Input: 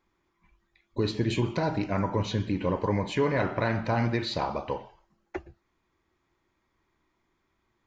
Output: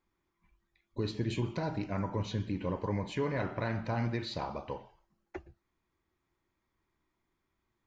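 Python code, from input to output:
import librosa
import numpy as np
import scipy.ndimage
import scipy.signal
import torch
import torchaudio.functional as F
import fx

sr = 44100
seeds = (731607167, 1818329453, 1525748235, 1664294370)

y = fx.bass_treble(x, sr, bass_db=3, treble_db=1)
y = F.gain(torch.from_numpy(y), -8.0).numpy()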